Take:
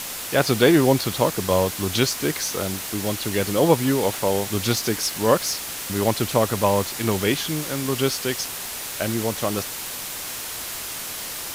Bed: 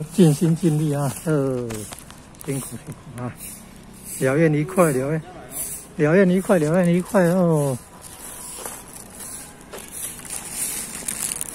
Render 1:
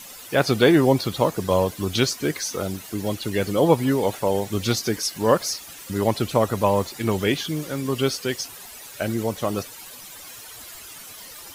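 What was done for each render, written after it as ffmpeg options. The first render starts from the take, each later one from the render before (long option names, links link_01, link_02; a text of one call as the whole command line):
ffmpeg -i in.wav -af "afftdn=noise_reduction=13:noise_floor=-32" out.wav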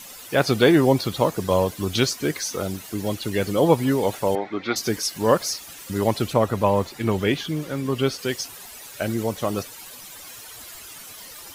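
ffmpeg -i in.wav -filter_complex "[0:a]asettb=1/sr,asplit=3[link_01][link_02][link_03];[link_01]atrim=end=4.354[link_04];[link_02]atrim=start=4.35:end=4.76,asetpts=PTS-STARTPTS,afade=type=in:duration=0.004:curve=qsin,afade=type=out:start_time=0.406:duration=0.004:curve=qsin,highpass=310,equalizer=frequency=310:width_type=q:width=4:gain=5,equalizer=frequency=490:width_type=q:width=4:gain=-4,equalizer=frequency=750:width_type=q:width=4:gain=4,equalizer=frequency=1300:width_type=q:width=4:gain=5,equalizer=frequency=2100:width_type=q:width=4:gain=8,equalizer=frequency=2900:width_type=q:width=4:gain=-10,lowpass=frequency=3400:width=0.5412,lowpass=frequency=3400:width=1.3066[link_05];[link_03]atrim=start=4.756[link_06];[link_04][link_05]acrossfade=duration=0.004:curve1=hsin:curve2=qsin[link_07];[link_07][link_06]acrossfade=duration=0.004:curve1=qsin:curve2=hsin,asettb=1/sr,asplit=3[link_08][link_09][link_10];[link_08]atrim=end=6.334[link_11];[link_09]atrim=start=6.33:end=8.19,asetpts=PTS-STARTPTS,afade=type=in:duration=0.004:curve=qsin,afade=type=out:start_time=1.856:duration=0.004:curve=qsin,bass=frequency=250:gain=1,treble=frequency=4000:gain=-6[link_12];[link_10]atrim=start=8.186[link_13];[link_11][link_12]acrossfade=duration=0.004:curve1=hsin:curve2=qsin[link_14];[link_14][link_13]acrossfade=duration=0.004:curve1=qsin:curve2=hsin" out.wav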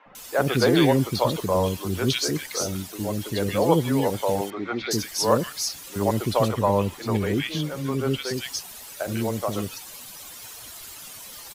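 ffmpeg -i in.wav -filter_complex "[0:a]acrossover=split=400|1800[link_01][link_02][link_03];[link_01]adelay=60[link_04];[link_03]adelay=150[link_05];[link_04][link_02][link_05]amix=inputs=3:normalize=0" out.wav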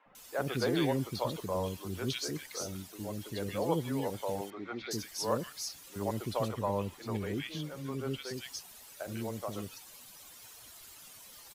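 ffmpeg -i in.wav -af "volume=-11.5dB" out.wav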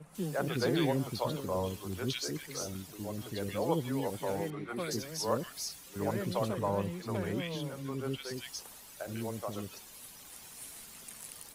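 ffmpeg -i in.wav -i bed.wav -filter_complex "[1:a]volume=-22.5dB[link_01];[0:a][link_01]amix=inputs=2:normalize=0" out.wav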